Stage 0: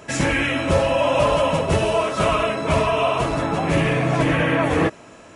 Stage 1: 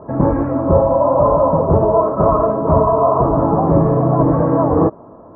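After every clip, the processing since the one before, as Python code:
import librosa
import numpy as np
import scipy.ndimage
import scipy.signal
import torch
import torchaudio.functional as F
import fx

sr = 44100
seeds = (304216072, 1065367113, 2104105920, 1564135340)

y = fx.rider(x, sr, range_db=10, speed_s=0.5)
y = scipy.signal.sosfilt(scipy.signal.ellip(4, 1.0, 70, 1100.0, 'lowpass', fs=sr, output='sos'), y)
y = y * 10.0 ** (7.0 / 20.0)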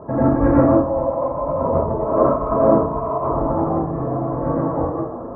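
y = fx.over_compress(x, sr, threshold_db=-19.0, ratio=-0.5)
y = fx.rev_plate(y, sr, seeds[0], rt60_s=0.55, hf_ratio=0.65, predelay_ms=80, drr_db=-9.0)
y = y * 10.0 ** (-7.5 / 20.0)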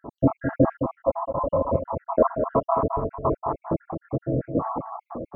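y = fx.spec_dropout(x, sr, seeds[1], share_pct=77)
y = y + 10.0 ** (-8.0 / 20.0) * np.pad(y, (int(213 * sr / 1000.0), 0))[:len(y)]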